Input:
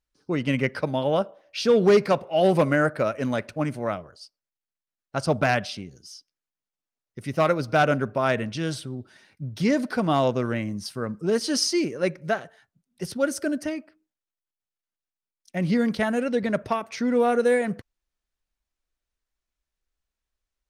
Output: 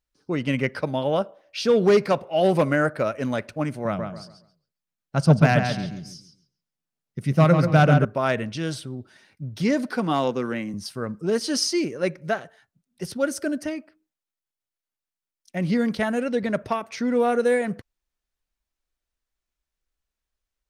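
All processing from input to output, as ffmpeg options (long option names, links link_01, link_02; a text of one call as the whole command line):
ffmpeg -i in.wav -filter_complex "[0:a]asettb=1/sr,asplit=3[link_01][link_02][link_03];[link_01]atrim=end=3.854[link_04];[link_02]atrim=start=3.85:end=8.05,asetpts=PTS-STARTPTS,afade=type=in:duration=0.004:curve=qsin,afade=type=out:start_time=4.196:duration=0.004:curve=qsin,equalizer=frequency=160:width=1.8:gain=13,asplit=2[link_05][link_06];[link_06]adelay=137,lowpass=frequency=3400:poles=1,volume=-5.5dB,asplit=2[link_07][link_08];[link_08]adelay=137,lowpass=frequency=3400:poles=1,volume=0.3,asplit=2[link_09][link_10];[link_10]adelay=137,lowpass=frequency=3400:poles=1,volume=0.3,asplit=2[link_11][link_12];[link_12]adelay=137,lowpass=frequency=3400:poles=1,volume=0.3[link_13];[link_05][link_07][link_09][link_11][link_13]amix=inputs=5:normalize=0,atrim=end_sample=185220[link_14];[link_03]atrim=start=8.046[link_15];[link_04][link_14]acrossfade=duration=0.004:curve1=hsin:curve2=qsin[link_16];[link_16][link_15]acrossfade=duration=0.004:curve1=qsin:curve2=hsin,asettb=1/sr,asplit=3[link_17][link_18][link_19];[link_17]atrim=end=9.894[link_20];[link_18]atrim=start=9.89:end=10.74,asetpts=PTS-STARTPTS,afade=type=in:duration=0.004:curve=qsin,afade=type=out:start_time=0.846:duration=0.004:curve=qsin,highpass=frequency=150:width=0.5412,highpass=frequency=150:width=1.3066,bandreject=frequency=630:width=7.2[link_21];[link_19]atrim=start=10.736[link_22];[link_20][link_21]acrossfade=duration=0.004:curve1=hsin:curve2=qsin[link_23];[link_23][link_22]acrossfade=duration=0.004:curve1=qsin:curve2=hsin" out.wav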